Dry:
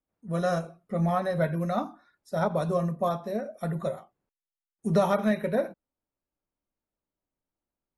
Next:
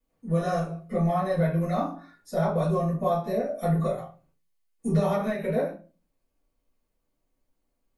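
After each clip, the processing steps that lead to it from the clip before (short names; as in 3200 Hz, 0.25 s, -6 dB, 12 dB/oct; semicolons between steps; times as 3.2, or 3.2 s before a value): compressor 3:1, threshold -35 dBFS, peak gain reduction 12.5 dB; reverb RT60 0.35 s, pre-delay 3 ms, DRR -8.5 dB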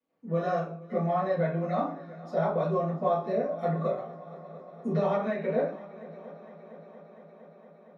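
HPF 220 Hz 12 dB/oct; air absorption 210 m; multi-head echo 0.231 s, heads second and third, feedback 70%, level -20 dB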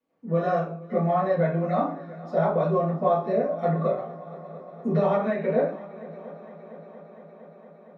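LPF 3100 Hz 6 dB/oct; gain +4.5 dB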